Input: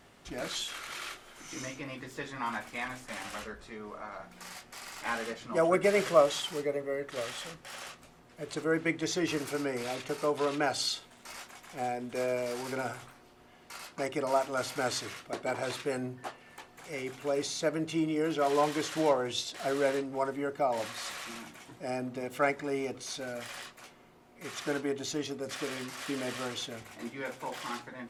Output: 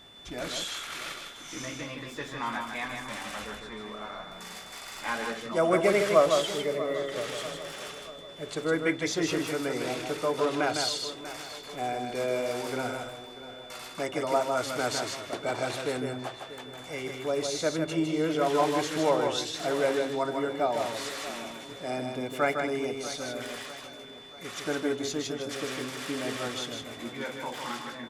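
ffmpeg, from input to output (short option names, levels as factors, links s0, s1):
-filter_complex "[0:a]asplit=2[s0][s1];[s1]adelay=639,lowpass=f=4800:p=1,volume=0.2,asplit=2[s2][s3];[s3]adelay=639,lowpass=f=4800:p=1,volume=0.5,asplit=2[s4][s5];[s5]adelay=639,lowpass=f=4800:p=1,volume=0.5,asplit=2[s6][s7];[s7]adelay=639,lowpass=f=4800:p=1,volume=0.5,asplit=2[s8][s9];[s9]adelay=639,lowpass=f=4800:p=1,volume=0.5[s10];[s2][s4][s6][s8][s10]amix=inputs=5:normalize=0[s11];[s0][s11]amix=inputs=2:normalize=0,aeval=exprs='val(0)+0.00224*sin(2*PI*3500*n/s)':c=same,asplit=2[s12][s13];[s13]aecho=0:1:156:0.562[s14];[s12][s14]amix=inputs=2:normalize=0,volume=1.19"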